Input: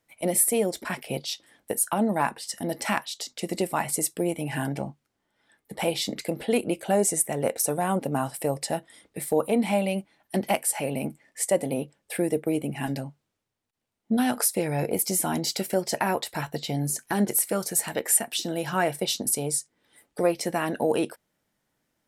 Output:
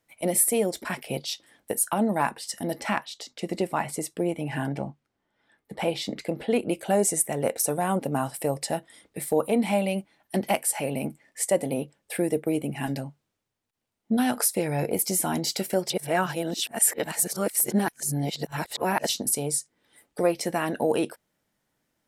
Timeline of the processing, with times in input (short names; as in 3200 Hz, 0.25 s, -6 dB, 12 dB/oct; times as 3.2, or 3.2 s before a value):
2.79–6.69 LPF 3300 Hz 6 dB/oct
15.9–19.09 reverse